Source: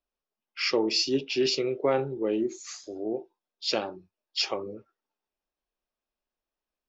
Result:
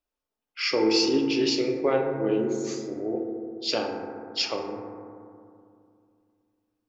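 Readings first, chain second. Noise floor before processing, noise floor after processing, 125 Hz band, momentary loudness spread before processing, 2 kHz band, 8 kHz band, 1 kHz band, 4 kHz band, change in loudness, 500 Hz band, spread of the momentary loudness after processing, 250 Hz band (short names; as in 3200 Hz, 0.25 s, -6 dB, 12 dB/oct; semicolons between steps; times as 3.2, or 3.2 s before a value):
under -85 dBFS, under -85 dBFS, +2.5 dB, 15 LU, +1.5 dB, n/a, +2.5 dB, +1.0 dB, +2.0 dB, +2.5 dB, 15 LU, +5.0 dB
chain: FDN reverb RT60 2.4 s, low-frequency decay 1.3×, high-frequency decay 0.25×, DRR 1.5 dB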